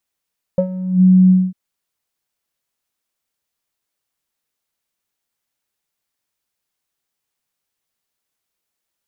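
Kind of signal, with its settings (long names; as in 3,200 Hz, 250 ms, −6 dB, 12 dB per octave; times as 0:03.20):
subtractive voice square F#3 12 dB per octave, low-pass 190 Hz, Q 9.4, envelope 1.5 octaves, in 0.41 s, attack 1.1 ms, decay 0.09 s, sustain −9 dB, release 0.23 s, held 0.72 s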